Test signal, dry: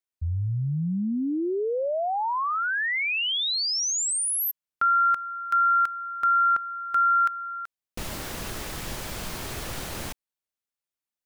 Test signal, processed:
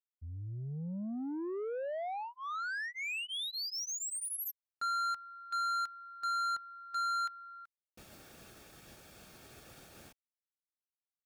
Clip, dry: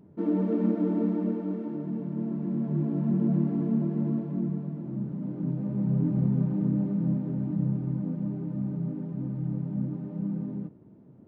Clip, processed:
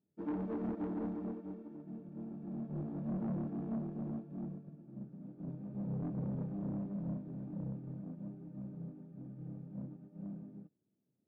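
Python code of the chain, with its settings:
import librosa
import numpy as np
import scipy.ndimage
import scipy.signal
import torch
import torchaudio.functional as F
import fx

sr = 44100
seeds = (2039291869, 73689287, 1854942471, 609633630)

y = fx.notch_comb(x, sr, f0_hz=1000.0)
y = 10.0 ** (-27.0 / 20.0) * np.tanh(y / 10.0 ** (-27.0 / 20.0))
y = fx.upward_expand(y, sr, threshold_db=-45.0, expansion=2.5)
y = y * librosa.db_to_amplitude(-5.0)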